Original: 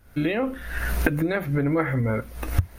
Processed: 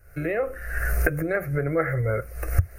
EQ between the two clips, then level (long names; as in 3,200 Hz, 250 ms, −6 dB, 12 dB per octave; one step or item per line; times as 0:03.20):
dynamic equaliser 3,400 Hz, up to −7 dB, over −48 dBFS, Q 1.5
phaser with its sweep stopped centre 930 Hz, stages 6
+2.5 dB